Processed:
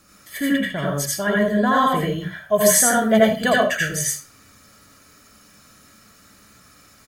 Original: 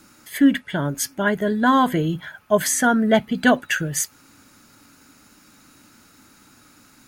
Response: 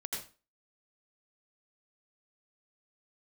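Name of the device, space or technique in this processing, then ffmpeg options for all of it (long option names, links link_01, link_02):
microphone above a desk: -filter_complex "[0:a]aecho=1:1:1.7:0.54[link_01];[1:a]atrim=start_sample=2205[link_02];[link_01][link_02]afir=irnorm=-1:irlink=0,asettb=1/sr,asplit=3[link_03][link_04][link_05];[link_03]atrim=end=2.554[link_06];[link_04]atrim=start=2.55:end=3.56,asetpts=PTS-STARTPTS,afade=type=in:duration=0.004:curve=qsin,afade=type=out:start_time=1.006:duration=0.004:curve=qsin,highshelf=frequency=7500:gain=10[link_07];[link_05]atrim=start=3.556[link_08];[link_06][link_07]acrossfade=duration=0.004:curve1=hsin:curve2=qsin[link_09];[link_09][link_08]acrossfade=duration=0.004:curve1=qsin:curve2=hsin"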